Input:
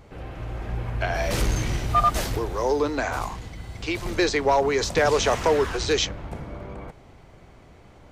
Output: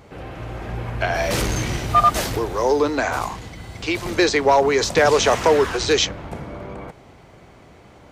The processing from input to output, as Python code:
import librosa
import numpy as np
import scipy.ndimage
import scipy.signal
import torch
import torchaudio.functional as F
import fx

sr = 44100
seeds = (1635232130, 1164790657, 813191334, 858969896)

y = fx.highpass(x, sr, hz=110.0, slope=6)
y = F.gain(torch.from_numpy(y), 5.0).numpy()